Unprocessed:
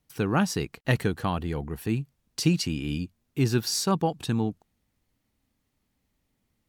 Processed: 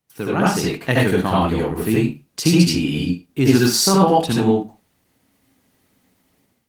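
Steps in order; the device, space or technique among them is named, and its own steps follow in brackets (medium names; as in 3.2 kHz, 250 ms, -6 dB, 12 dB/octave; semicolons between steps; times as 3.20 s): far-field microphone of a smart speaker (reverberation RT60 0.30 s, pre-delay 66 ms, DRR -4 dB; high-pass 140 Hz 12 dB/octave; level rider gain up to 12 dB; Opus 20 kbps 48 kHz)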